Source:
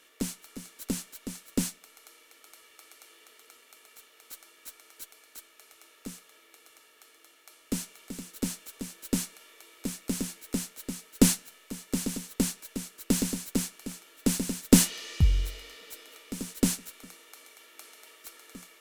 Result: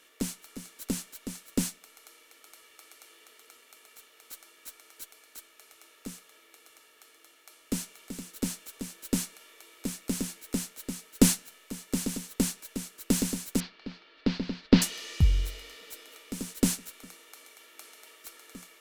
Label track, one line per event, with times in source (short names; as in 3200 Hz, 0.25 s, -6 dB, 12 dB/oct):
13.600000	14.820000	elliptic low-pass 4600 Hz, stop band 60 dB